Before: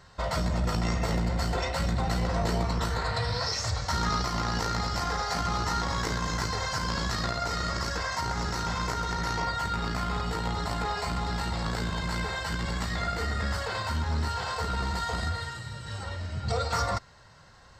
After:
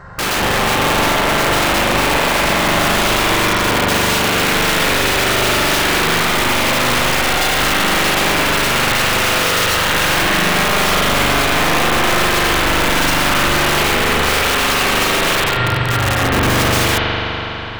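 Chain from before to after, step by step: resonant high shelf 2400 Hz -13.5 dB, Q 1.5; in parallel at +2.5 dB: limiter -26.5 dBFS, peak gain reduction 10.5 dB; on the sum: wrapped overs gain 23 dB; spring tank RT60 3.9 s, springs 41 ms, chirp 50 ms, DRR -4 dB; gain +8.5 dB

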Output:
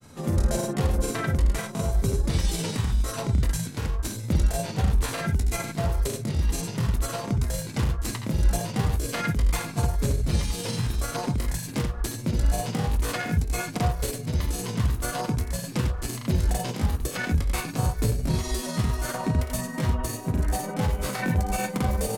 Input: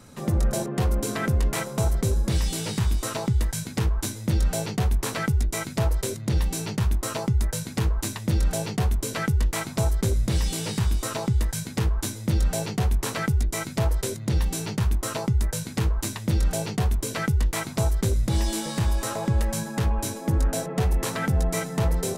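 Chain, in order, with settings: gliding pitch shift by +2.5 st starting unshifted; early reflections 25 ms -7.5 dB, 78 ms -6 dB; grains 0.1 s, grains 20/s, spray 26 ms, pitch spread up and down by 0 st

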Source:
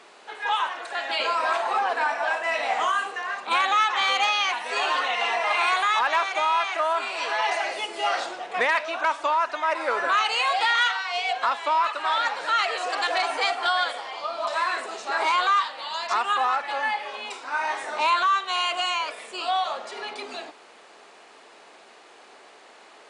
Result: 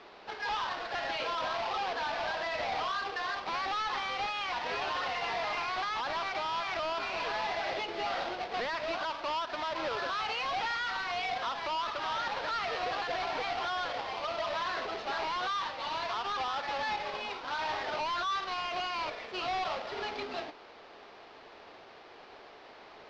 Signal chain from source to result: half-waves squared off; steep low-pass 5000 Hz 36 dB/oct; limiter -21 dBFS, peak gain reduction 10.5 dB; gain -6 dB

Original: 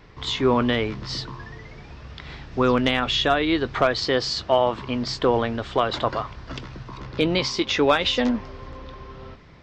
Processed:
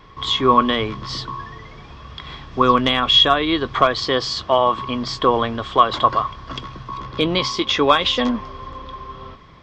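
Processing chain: de-hum 60.2 Hz, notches 2; small resonant body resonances 1100/3300 Hz, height 16 dB, ringing for 45 ms; gain +1.5 dB

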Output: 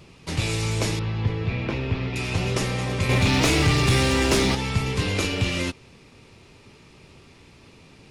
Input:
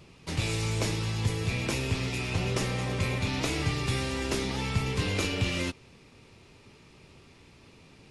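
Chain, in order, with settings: 0.99–2.16 air absorption 310 m; 3.09–4.55 sample leveller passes 2; gain +4.5 dB

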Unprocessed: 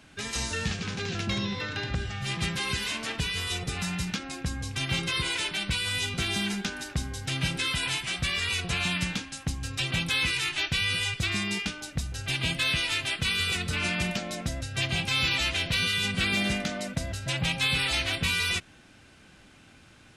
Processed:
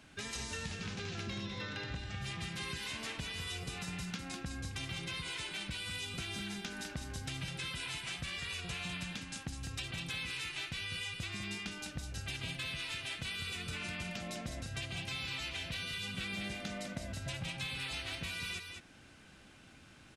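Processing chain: compressor, threshold -34 dBFS, peak gain reduction 11 dB; on a send: echo 0.202 s -6.5 dB; on the sum: gain -4.5 dB

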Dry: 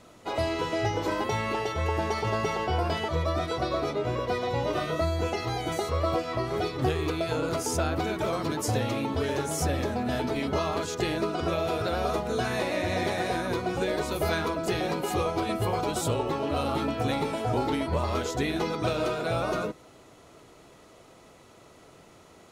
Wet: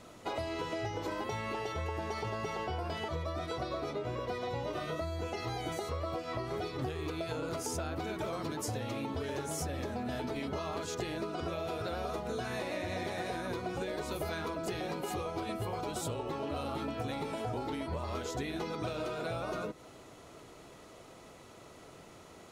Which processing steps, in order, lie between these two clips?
compressor, threshold -34 dBFS, peak gain reduction 12.5 dB

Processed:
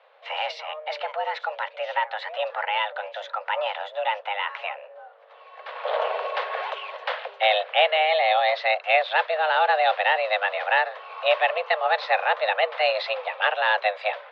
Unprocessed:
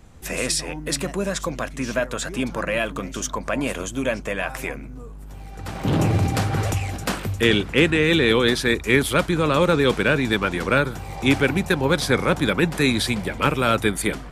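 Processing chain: 8.05–8.56 notch comb 1200 Hz; mistuned SSB +310 Hz 220–3500 Hz; gain -1.5 dB

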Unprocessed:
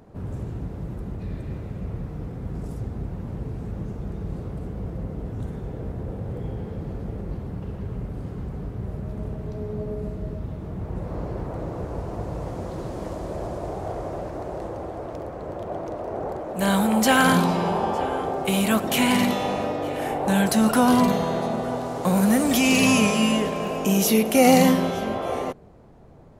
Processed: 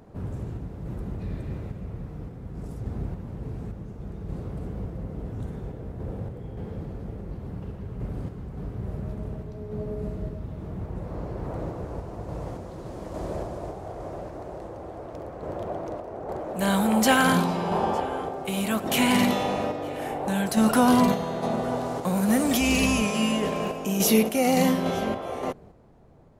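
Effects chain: 22.6–23.02 octaver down 2 oct, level -6 dB; random-step tremolo

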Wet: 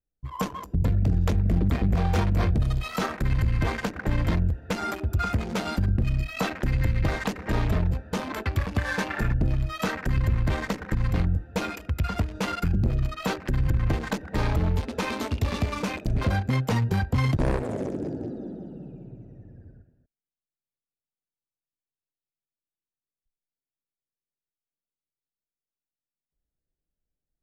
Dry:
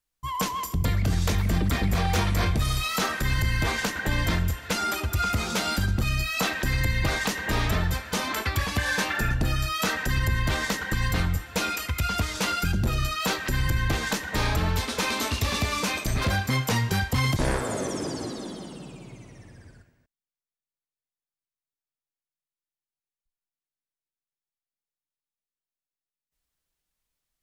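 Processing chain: Wiener smoothing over 41 samples; high shelf 3000 Hz -10 dB; gain +2 dB

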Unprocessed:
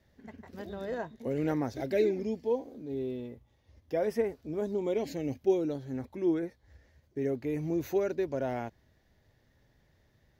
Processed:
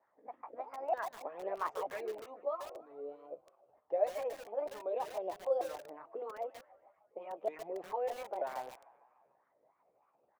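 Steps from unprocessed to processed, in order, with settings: repeated pitch sweeps +6.5 st, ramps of 0.935 s; harmonic-percussive split percussive +8 dB; compressor 1.5:1, threshold -40 dBFS, peak gain reduction 7 dB; wah 3.2 Hz 500–1200 Hz, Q 4.2; notches 50/100/150/200/250 Hz; low-pass opened by the level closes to 1100 Hz, open at -28 dBFS; tilt +3.5 dB/oct; frequency-shifting echo 0.149 s, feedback 59%, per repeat +35 Hz, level -20 dB; lo-fi delay 0.142 s, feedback 35%, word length 8-bit, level -9.5 dB; gain +7.5 dB

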